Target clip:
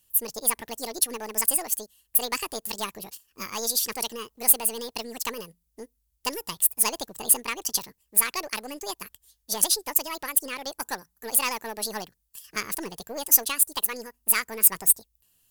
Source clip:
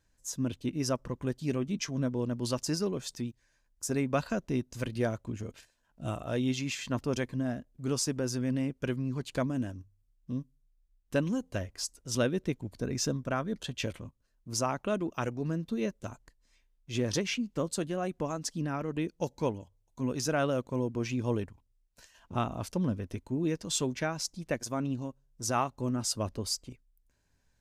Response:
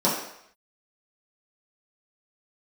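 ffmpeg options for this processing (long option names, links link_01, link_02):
-af "aeval=exprs='0.158*(cos(1*acos(clip(val(0)/0.158,-1,1)))-cos(1*PI/2))+0.01*(cos(6*acos(clip(val(0)/0.158,-1,1)))-cos(6*PI/2))':channel_layout=same,asetrate=78498,aresample=44100,crystalizer=i=10:c=0,volume=-6.5dB"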